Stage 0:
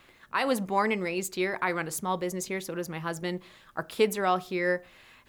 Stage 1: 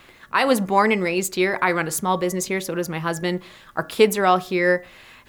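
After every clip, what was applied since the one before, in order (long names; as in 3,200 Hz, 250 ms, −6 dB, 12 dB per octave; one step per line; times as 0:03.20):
hum removal 282.4 Hz, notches 7
level +8.5 dB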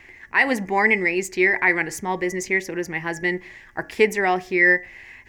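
drawn EQ curve 100 Hz 0 dB, 150 Hz −10 dB, 380 Hz −2 dB, 550 Hz −11 dB, 840 Hz −3 dB, 1,300 Hz −16 dB, 1,900 Hz +8 dB, 3,700 Hz −15 dB, 5,700 Hz −3 dB, 10,000 Hz −14 dB
level +2.5 dB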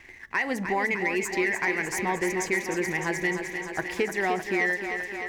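downward compressor, threshold −22 dBFS, peak gain reduction 10.5 dB
leveller curve on the samples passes 1
feedback echo with a high-pass in the loop 304 ms, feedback 76%, high-pass 170 Hz, level −7.5 dB
level −4.5 dB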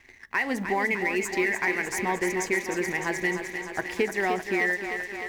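mu-law and A-law mismatch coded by A
on a send at −18 dB: convolution reverb RT60 0.15 s, pre-delay 3 ms
on the sum: level +1 dB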